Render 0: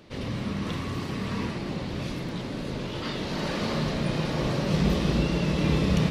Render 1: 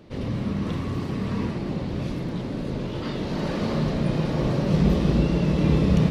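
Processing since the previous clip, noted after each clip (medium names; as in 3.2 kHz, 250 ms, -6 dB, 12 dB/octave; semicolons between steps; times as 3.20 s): tilt shelf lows +4.5 dB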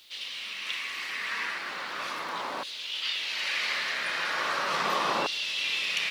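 LFO high-pass saw down 0.38 Hz 950–3500 Hz; bit crusher 11-bit; trim +6 dB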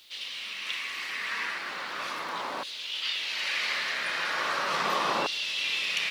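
no audible change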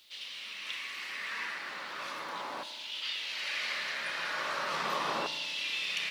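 reverberation RT60 1.4 s, pre-delay 3 ms, DRR 10.5 dB; trim -5.5 dB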